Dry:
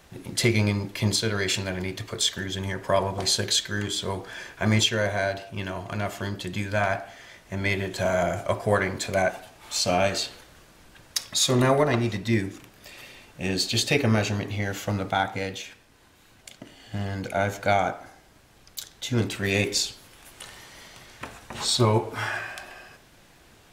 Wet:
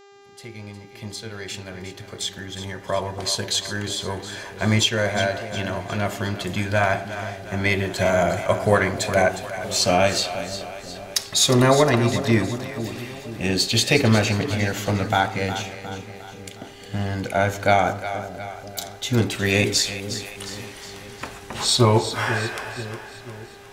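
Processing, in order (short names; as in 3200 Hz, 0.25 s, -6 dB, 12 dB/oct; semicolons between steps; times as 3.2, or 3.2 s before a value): opening faded in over 6.12 s; buzz 400 Hz, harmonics 19, -54 dBFS -6 dB/oct; split-band echo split 550 Hz, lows 0.487 s, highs 0.359 s, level -11 dB; gain +4.5 dB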